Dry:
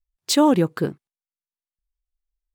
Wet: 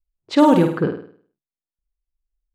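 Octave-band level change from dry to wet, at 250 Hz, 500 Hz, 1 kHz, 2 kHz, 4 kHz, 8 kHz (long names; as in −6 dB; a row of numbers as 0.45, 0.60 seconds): +3.5 dB, +3.5 dB, +4.0 dB, +3.0 dB, −6.0 dB, below −10 dB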